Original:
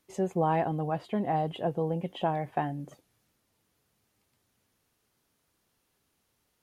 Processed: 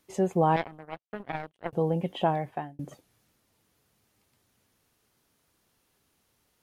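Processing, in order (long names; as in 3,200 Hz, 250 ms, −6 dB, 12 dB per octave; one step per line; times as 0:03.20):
0:00.56–0:01.73: power curve on the samples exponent 3
0:02.28–0:02.79: fade out
level +3.5 dB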